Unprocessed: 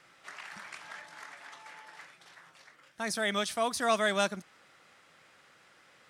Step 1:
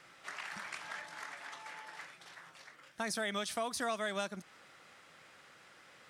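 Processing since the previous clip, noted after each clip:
downward compressor 6 to 1, threshold −35 dBFS, peak gain reduction 12 dB
level +1.5 dB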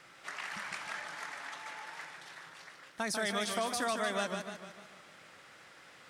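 feedback echo with a swinging delay time 150 ms, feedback 51%, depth 117 cents, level −6 dB
level +2 dB

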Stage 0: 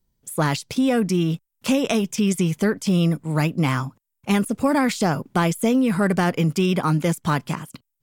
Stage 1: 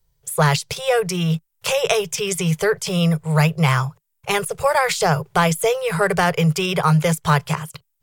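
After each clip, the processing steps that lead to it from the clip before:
Chebyshev band-stop filter 160–410 Hz, order 3
level +6 dB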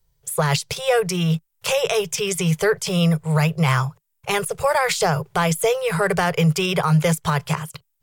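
brickwall limiter −8.5 dBFS, peak gain reduction 6.5 dB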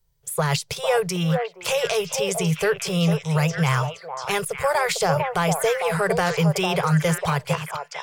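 echo through a band-pass that steps 451 ms, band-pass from 710 Hz, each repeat 1.4 octaves, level −2 dB
level −2.5 dB

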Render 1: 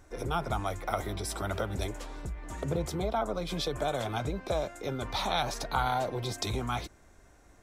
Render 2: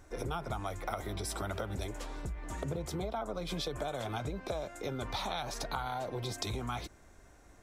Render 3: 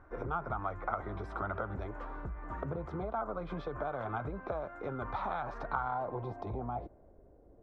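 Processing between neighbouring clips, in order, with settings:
downward compressor, threshold −33 dBFS, peak gain reduction 9.5 dB
low-pass filter sweep 1,300 Hz → 500 Hz, 0:05.76–0:07.28; level −2 dB

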